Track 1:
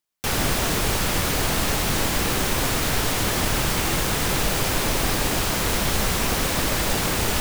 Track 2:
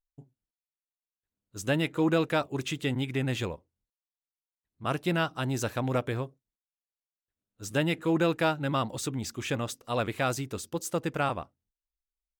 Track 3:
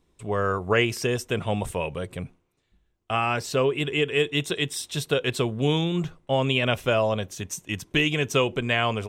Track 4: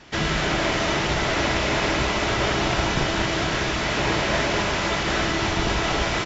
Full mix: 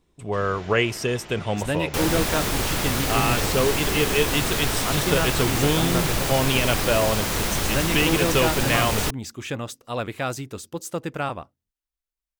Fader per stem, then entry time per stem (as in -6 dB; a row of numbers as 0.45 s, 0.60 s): -2.0 dB, +1.0 dB, +0.5 dB, -19.0 dB; 1.70 s, 0.00 s, 0.00 s, 0.20 s